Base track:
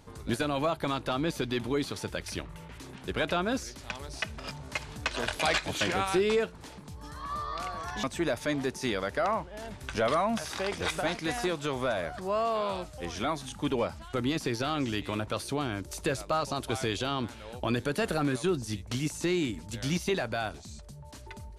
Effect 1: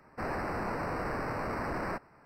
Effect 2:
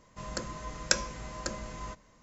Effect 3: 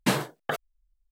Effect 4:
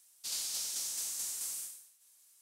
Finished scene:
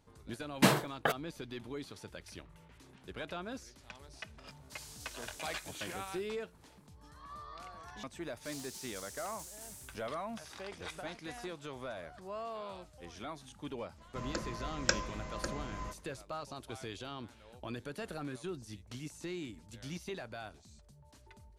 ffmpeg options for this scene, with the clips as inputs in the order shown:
-filter_complex "[4:a]asplit=2[a][b];[0:a]volume=-13dB[c];[b]aeval=exprs='val(0)*sgn(sin(2*PI*120*n/s))':c=same[d];[2:a]highshelf=f=5.7k:g=-8.5[e];[3:a]atrim=end=1.11,asetpts=PTS-STARTPTS,volume=-1.5dB,afade=t=in:d=0.004:c=hsin,afade=t=out:st=1.106:d=0.004:c=hsin,adelay=560[f];[a]atrim=end=2.41,asetpts=PTS-STARTPTS,volume=-15dB,afade=t=in:d=0.004:c=hsin,afade=t=out:st=2.406:d=0.004:c=hsin,adelay=4460[g];[d]atrim=end=2.41,asetpts=PTS-STARTPTS,volume=-11.5dB,afade=t=in:d=0.004:c=hsin,afade=t=out:st=2.406:d=0.004:c=hsin,adelay=8200[h];[e]atrim=end=2.22,asetpts=PTS-STARTPTS,volume=-1.5dB,afade=t=in:d=0.004:c=hsin,afade=t=out:st=2.216:d=0.004:c=hsin,adelay=13980[i];[c][f][g][h][i]amix=inputs=5:normalize=0"

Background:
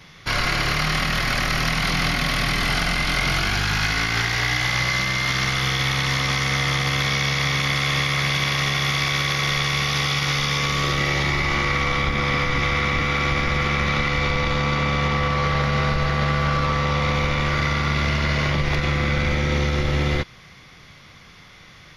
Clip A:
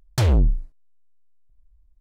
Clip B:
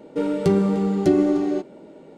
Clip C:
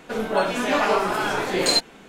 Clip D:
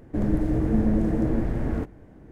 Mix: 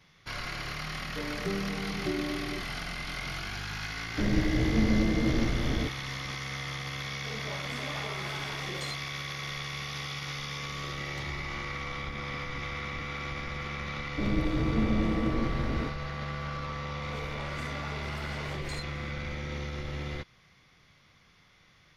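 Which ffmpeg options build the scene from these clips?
-filter_complex "[4:a]asplit=2[a][b];[3:a]asplit=2[c][d];[0:a]volume=-15dB[e];[c]alimiter=limit=-14dB:level=0:latency=1:release=150[f];[1:a]acompressor=threshold=-29dB:ratio=6:attack=3.2:release=140:knee=1:detection=peak[g];[d]acompressor=threshold=-30dB:ratio=6:attack=3.2:release=140:knee=1:detection=peak[h];[2:a]atrim=end=2.17,asetpts=PTS-STARTPTS,volume=-15.5dB,afade=t=in:d=0.004:c=hsin,afade=t=out:st=2.166:d=0.004:c=hsin,adelay=1000[i];[a]atrim=end=2.31,asetpts=PTS-STARTPTS,volume=-3.5dB,afade=t=in:d=0.004:c=hsin,afade=t=out:st=2.306:d=0.004:c=hsin,adelay=4040[j];[f]atrim=end=2.08,asetpts=PTS-STARTPTS,volume=-17dB,afade=t=in:d=0.004:c=hsin,afade=t=out:st=2.076:d=0.004:c=hsin,adelay=7150[k];[g]atrim=end=2,asetpts=PTS-STARTPTS,volume=-17.5dB,afade=t=in:d=0.004:c=hsin,afade=t=out:st=1.996:d=0.004:c=hsin,adelay=11000[l];[b]atrim=end=2.31,asetpts=PTS-STARTPTS,volume=-5.5dB,afade=t=in:d=0.004:c=hsin,afade=t=out:st=2.306:d=0.004:c=hsin,adelay=14040[m];[h]atrim=end=2.08,asetpts=PTS-STARTPTS,volume=-10dB,afade=t=in:d=0.004:c=hsin,afade=t=out:st=2.076:d=0.004:c=hsin,adelay=17030[n];[e][i][j][k][l][m][n]amix=inputs=7:normalize=0"

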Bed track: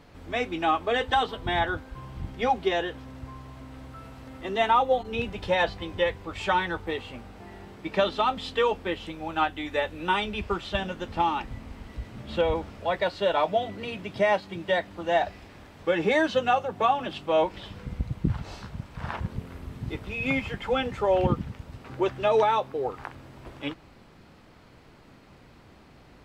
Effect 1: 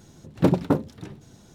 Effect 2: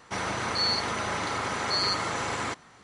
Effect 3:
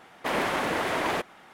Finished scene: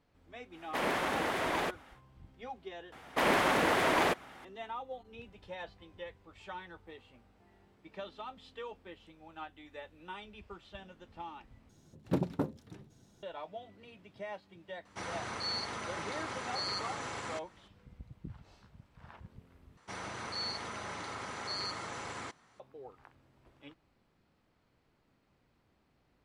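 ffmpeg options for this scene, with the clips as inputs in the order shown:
-filter_complex "[3:a]asplit=2[a][b];[2:a]asplit=2[c][d];[0:a]volume=-20dB,asplit=3[e][f][g];[e]atrim=end=11.694[h];[1:a]atrim=end=1.54,asetpts=PTS-STARTPTS,volume=-12dB[i];[f]atrim=start=13.226:end=19.774[j];[d]atrim=end=2.83,asetpts=PTS-STARTPTS,volume=-11.5dB[k];[g]atrim=start=22.596[l];[a]atrim=end=1.53,asetpts=PTS-STARTPTS,volume=-5.5dB,afade=t=in:d=0.1,afade=t=out:st=1.43:d=0.1,adelay=490[m];[b]atrim=end=1.53,asetpts=PTS-STARTPTS,volume=-0.5dB,afade=t=in:d=0.004:c=hsin,afade=t=out:st=1.526:d=0.004:c=hsin,adelay=2920[n];[c]atrim=end=2.83,asetpts=PTS-STARTPTS,volume=-10dB,afade=t=in:d=0.004:c=hsin,afade=t=out:st=2.826:d=0.004:c=hsin,adelay=14850[o];[h][i]acrossfade=d=0.004:c1=hsin:c2=hsin[p];[p][j]acrossfade=d=0.004:c1=hsin:c2=hsin[q];[q][k]acrossfade=d=0.004:c1=hsin:c2=hsin[r];[r][l]acrossfade=d=0.004:c1=hsin:c2=hsin[s];[s][m][n][o]amix=inputs=4:normalize=0"

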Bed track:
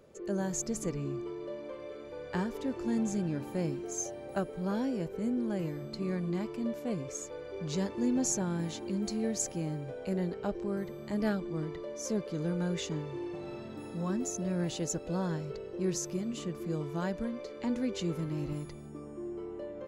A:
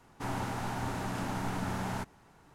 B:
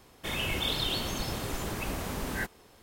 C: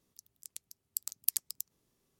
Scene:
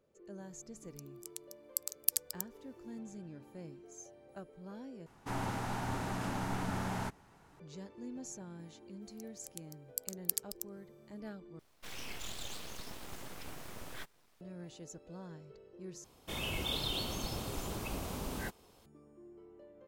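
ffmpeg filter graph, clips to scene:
-filter_complex "[3:a]asplit=2[a][b];[2:a]asplit=2[c][d];[0:a]volume=-15.5dB[e];[c]aeval=exprs='abs(val(0))':c=same[f];[d]equalizer=f=1.8k:w=2.3:g=-7.5[g];[e]asplit=4[h][i][j][k];[h]atrim=end=5.064[l];[1:a]atrim=end=2.54,asetpts=PTS-STARTPTS,volume=-2dB[m];[i]atrim=start=7.596:end=11.594[n];[f]atrim=end=2.82,asetpts=PTS-STARTPTS,volume=-10.5dB[o];[j]atrim=start=14.406:end=16.044[p];[g]atrim=end=2.82,asetpts=PTS-STARTPTS,volume=-5dB[q];[k]atrim=start=18.856[r];[a]atrim=end=2.19,asetpts=PTS-STARTPTS,volume=-0.5dB,afade=t=in:d=0.004:c=hsin,afade=t=out:st=2.186:d=0.004:c=hsin,adelay=800[s];[b]atrim=end=2.19,asetpts=PTS-STARTPTS,volume=-3dB,afade=t=in:d=0.004:c=hsin,afade=t=out:st=2.186:d=0.004:c=hsin,adelay=9010[t];[l][m]acrossfade=d=0.004:c1=hsin:c2=hsin[u];[u][n]acrossfade=d=0.004:c1=hsin:c2=hsin[v];[v][o]acrossfade=d=0.004:c1=hsin:c2=hsin[w];[w][p]acrossfade=d=0.004:c1=hsin:c2=hsin[x];[x][q]acrossfade=d=0.004:c1=hsin:c2=hsin[y];[y][r]acrossfade=d=0.004:c1=hsin:c2=hsin[z];[z][s][t]amix=inputs=3:normalize=0"

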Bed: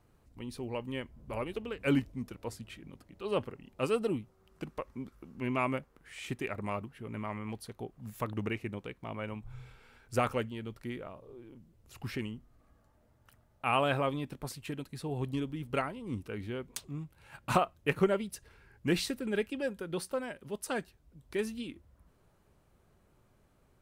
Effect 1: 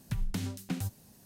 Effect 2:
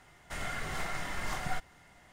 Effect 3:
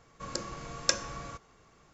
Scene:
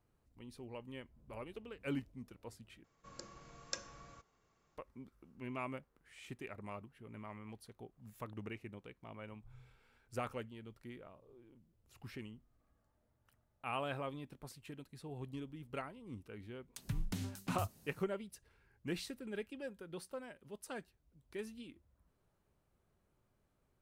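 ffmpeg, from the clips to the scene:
-filter_complex "[0:a]volume=-11dB,asplit=2[a][b];[a]atrim=end=2.844[c];[3:a]atrim=end=1.93,asetpts=PTS-STARTPTS,volume=-15dB[d];[b]atrim=start=4.766[e];[1:a]atrim=end=1.25,asetpts=PTS-STARTPTS,volume=-6dB,afade=t=in:d=0.004:c=hsin,afade=t=out:st=1.246:d=0.004:c=hsin,adelay=16780[f];[c][d]acrossfade=d=0.004:c1=hsin:c2=hsin[g];[g][e]acrossfade=d=0.004:c1=hsin:c2=hsin[h];[h][f]amix=inputs=2:normalize=0"

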